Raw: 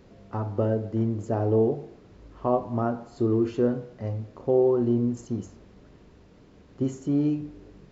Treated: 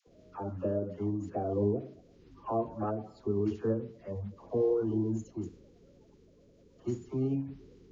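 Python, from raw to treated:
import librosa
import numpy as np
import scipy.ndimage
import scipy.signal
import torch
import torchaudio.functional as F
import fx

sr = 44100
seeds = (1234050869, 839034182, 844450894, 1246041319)

y = fx.spec_quant(x, sr, step_db=30)
y = fx.pitch_keep_formants(y, sr, semitones=-1.5)
y = fx.dispersion(y, sr, late='lows', ms=73.0, hz=720.0)
y = y * librosa.db_to_amplitude(-6.5)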